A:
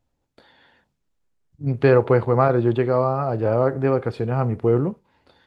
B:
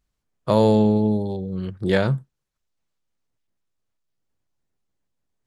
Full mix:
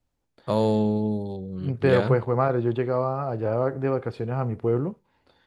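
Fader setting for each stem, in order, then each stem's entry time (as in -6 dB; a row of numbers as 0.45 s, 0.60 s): -5.0 dB, -5.5 dB; 0.00 s, 0.00 s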